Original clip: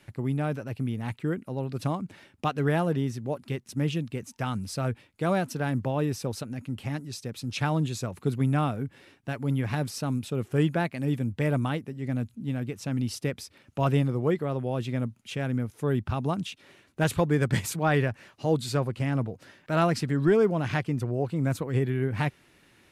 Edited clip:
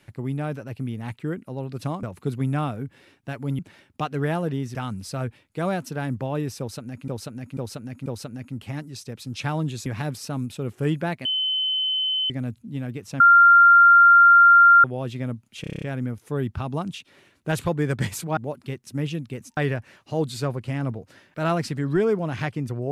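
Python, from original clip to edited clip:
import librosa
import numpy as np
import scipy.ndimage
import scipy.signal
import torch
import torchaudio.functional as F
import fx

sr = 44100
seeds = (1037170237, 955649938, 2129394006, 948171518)

y = fx.edit(x, sr, fx.move(start_s=3.19, length_s=1.2, to_s=17.89),
    fx.repeat(start_s=6.23, length_s=0.49, count=4),
    fx.move(start_s=8.03, length_s=1.56, to_s=2.03),
    fx.bleep(start_s=10.98, length_s=1.05, hz=3050.0, db=-21.0),
    fx.bleep(start_s=12.93, length_s=1.64, hz=1390.0, db=-9.0),
    fx.stutter(start_s=15.34, slice_s=0.03, count=8), tone=tone)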